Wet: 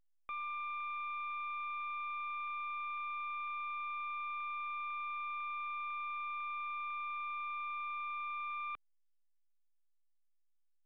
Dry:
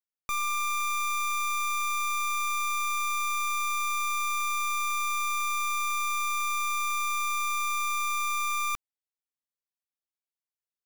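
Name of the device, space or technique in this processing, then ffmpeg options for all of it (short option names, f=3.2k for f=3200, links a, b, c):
telephone: -af "highpass=320,lowpass=3.3k,asoftclip=type=tanh:threshold=-31dB,volume=-6dB" -ar 8000 -c:a pcm_alaw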